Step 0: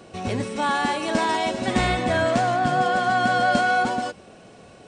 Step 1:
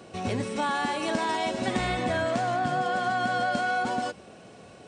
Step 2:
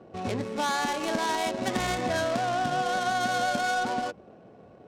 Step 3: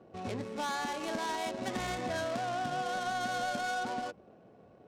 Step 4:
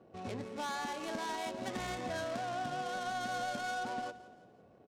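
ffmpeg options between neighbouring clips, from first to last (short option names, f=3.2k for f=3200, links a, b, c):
-af "highpass=59,acompressor=threshold=-22dB:ratio=6,volume=-1.5dB"
-af "adynamicsmooth=sensitivity=3.5:basefreq=800,bass=f=250:g=-3,treble=f=4k:g=12"
-af "asoftclip=type=tanh:threshold=-16.5dB,volume=-6.5dB"
-af "aecho=1:1:170|340|510|680:0.141|0.0636|0.0286|0.0129,volume=-3.5dB"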